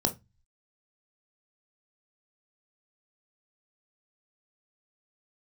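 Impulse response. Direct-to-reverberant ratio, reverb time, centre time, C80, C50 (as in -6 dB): 6.0 dB, 0.20 s, 8 ms, 27.5 dB, 16.5 dB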